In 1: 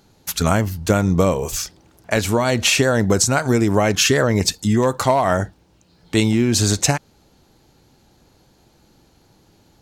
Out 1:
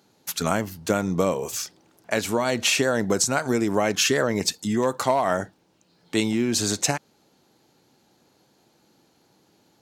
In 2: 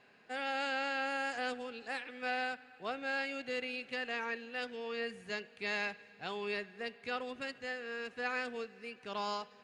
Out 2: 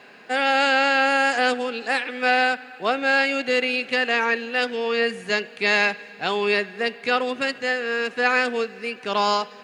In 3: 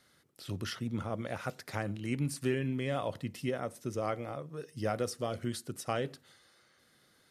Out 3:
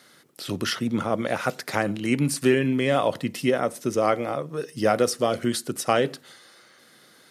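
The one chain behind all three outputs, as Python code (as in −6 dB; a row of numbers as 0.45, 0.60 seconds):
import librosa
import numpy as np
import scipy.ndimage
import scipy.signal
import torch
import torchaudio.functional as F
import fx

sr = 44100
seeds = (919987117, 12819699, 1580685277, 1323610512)

y = scipy.signal.sosfilt(scipy.signal.butter(2, 180.0, 'highpass', fs=sr, output='sos'), x)
y = y * 10.0 ** (-6 / 20.0) / np.max(np.abs(y))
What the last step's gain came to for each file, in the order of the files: −4.5, +16.5, +12.5 decibels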